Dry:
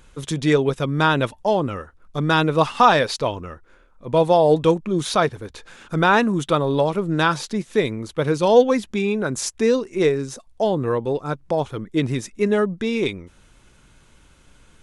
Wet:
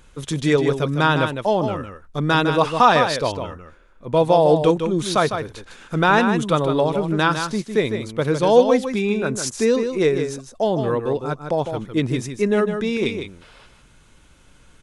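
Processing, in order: time-frequency box 13.41–13.66 s, 400–5500 Hz +11 dB; on a send: delay 155 ms -7.5 dB

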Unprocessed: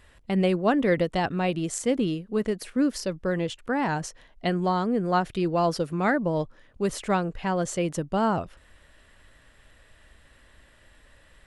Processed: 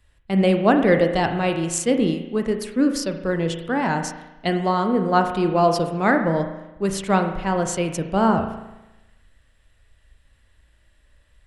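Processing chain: on a send at -5.5 dB: reverberation RT60 1.3 s, pre-delay 36 ms; on the sum: three bands expanded up and down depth 40%; trim +4 dB

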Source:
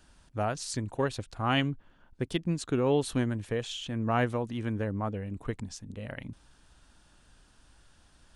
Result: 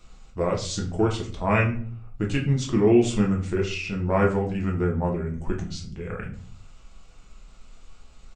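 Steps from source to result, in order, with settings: pitch shift -3.5 st; simulated room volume 36 m³, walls mixed, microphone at 0.68 m; trim +2 dB

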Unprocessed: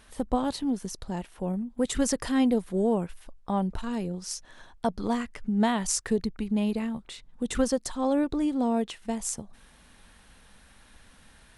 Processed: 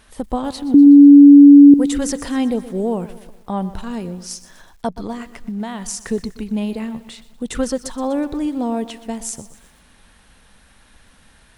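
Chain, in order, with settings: 0.74–1.74 s: bleep 285 Hz -7.5 dBFS; 4.97–6.01 s: compression, threshold -28 dBFS, peak gain reduction 9 dB; bit-crushed delay 123 ms, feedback 55%, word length 8-bit, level -15 dB; trim +4 dB

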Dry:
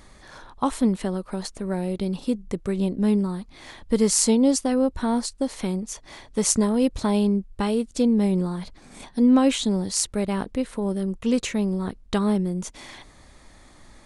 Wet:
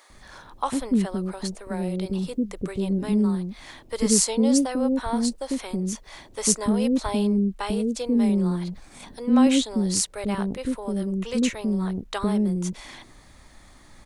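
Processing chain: word length cut 12-bit, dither none; bands offset in time highs, lows 100 ms, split 470 Hz

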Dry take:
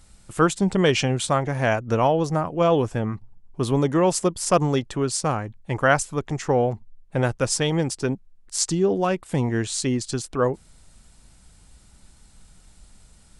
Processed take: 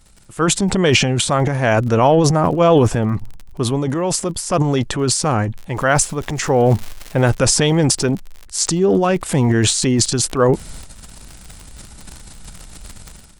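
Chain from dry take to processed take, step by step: crackle 34 per s -40 dBFS, from 5.72 s 400 per s, from 7.31 s 63 per s; transient shaper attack -1 dB, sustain +11 dB; level rider gain up to 12 dB; trim -1 dB

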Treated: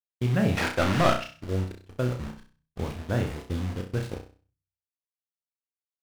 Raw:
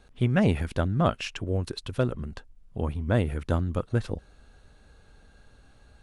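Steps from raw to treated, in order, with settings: 2.16–2.84 s: bass shelf 100 Hz +7 dB; 3.37–3.86 s: elliptic band-stop 440–3300 Hz; bit crusher 6-bit; treble shelf 8.2 kHz -10 dB; gate -31 dBFS, range -26 dB; 0.57–1.24 s: overdrive pedal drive 23 dB, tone 4.6 kHz, clips at -9.5 dBFS; flutter echo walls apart 5.5 m, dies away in 0.38 s; on a send at -18 dB: reverberation RT60 0.35 s, pre-delay 6 ms; on the sum: trim -4 dB

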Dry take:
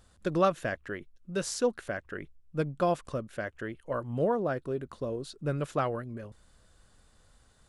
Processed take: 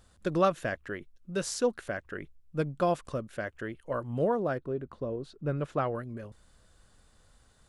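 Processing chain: 4.57–5.94 s: low-pass 1.2 kHz -> 2.4 kHz 6 dB/octave

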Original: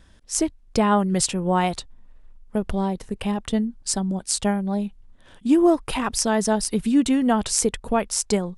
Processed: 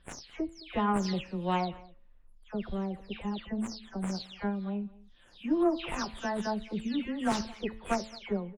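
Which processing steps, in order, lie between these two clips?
delay that grows with frequency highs early, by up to 265 ms; treble shelf 2.1 kHz +11 dB; de-hum 110.2 Hz, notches 27; Chebyshev shaper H 2 -9 dB, 7 -27 dB, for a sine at 4 dBFS; distance through air 300 m; on a send: delay 214 ms -22 dB; on the sum: trim -6.5 dB

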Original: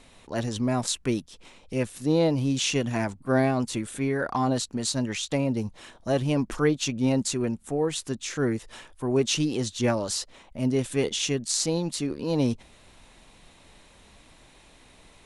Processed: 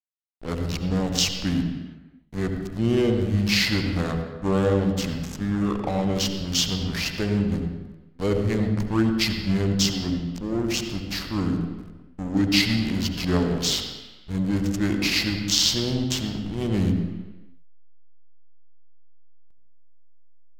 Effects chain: peaking EQ 7.6 kHz +7.5 dB 2.5 oct; hum 60 Hz, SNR 15 dB; hysteresis with a dead band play -23.5 dBFS; on a send at -4 dB: reverberation RT60 0.80 s, pre-delay 47 ms; on the sum: speed mistake 45 rpm record played at 33 rpm

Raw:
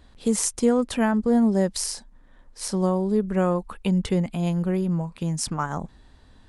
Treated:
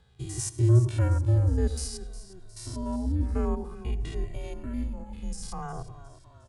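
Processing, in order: spectrogram pixelated in time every 100 ms; peaking EQ 250 Hz +10.5 dB 0.22 oct; frequency shift -130 Hz; in parallel at -10.5 dB: saturation -18 dBFS, distortion -10 dB; on the sum: frequency-shifting echo 359 ms, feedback 52%, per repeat -31 Hz, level -15 dB; on a send at -19 dB: reverberation RT60 0.50 s, pre-delay 76 ms; on the sum: endless flanger 2 ms -0.55 Hz; trim -5.5 dB

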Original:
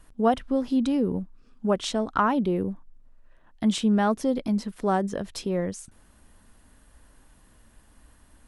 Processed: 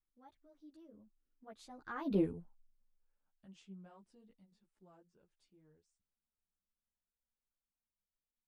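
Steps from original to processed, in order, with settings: Doppler pass-by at 2.18 s, 46 m/s, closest 2.4 m; three-phase chorus; trim -3 dB

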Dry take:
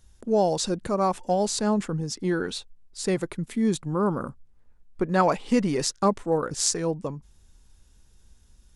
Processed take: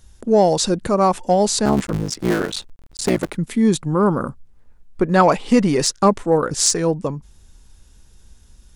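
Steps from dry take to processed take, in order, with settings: 1.65–3.36 s: cycle switcher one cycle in 3, muted; saturation -8.5 dBFS, distortion -29 dB; trim +8 dB

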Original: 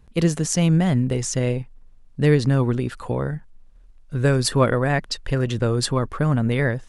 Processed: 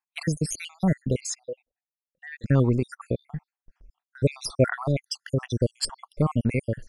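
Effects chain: random holes in the spectrogram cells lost 71%; 3.10–4.44 s: low-pass 5.4 kHz 12 dB/octave; gate with hold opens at -45 dBFS; 1.35–2.44 s: vowel filter e; MP3 192 kbps 48 kHz

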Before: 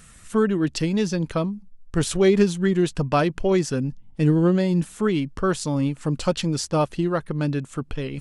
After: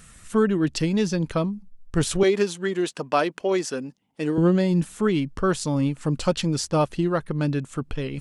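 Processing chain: 2.23–4.38 s: high-pass 350 Hz 12 dB/octave

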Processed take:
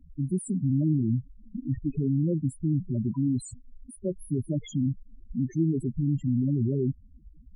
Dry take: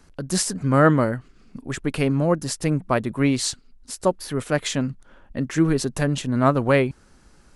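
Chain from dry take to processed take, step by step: FFT filter 370 Hz 0 dB, 540 Hz -8 dB, 4.9 kHz -12 dB, 10 kHz -2 dB; in parallel at +1 dB: compressor with a negative ratio -26 dBFS, ratio -0.5; on the sum: one-sided clip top -25 dBFS, bottom -8.5 dBFS; loudest bins only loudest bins 4; trim -3.5 dB

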